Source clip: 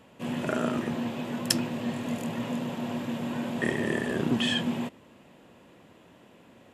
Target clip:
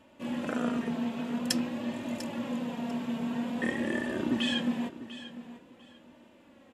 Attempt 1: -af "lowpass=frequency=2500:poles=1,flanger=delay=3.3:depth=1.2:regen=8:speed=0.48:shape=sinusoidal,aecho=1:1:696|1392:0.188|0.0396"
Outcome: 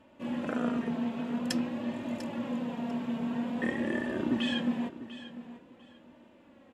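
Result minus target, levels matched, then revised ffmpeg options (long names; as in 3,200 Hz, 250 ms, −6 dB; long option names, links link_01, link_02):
8,000 Hz band −7.0 dB
-af "lowpass=frequency=8300:poles=1,flanger=delay=3.3:depth=1.2:regen=8:speed=0.48:shape=sinusoidal,aecho=1:1:696|1392:0.188|0.0396"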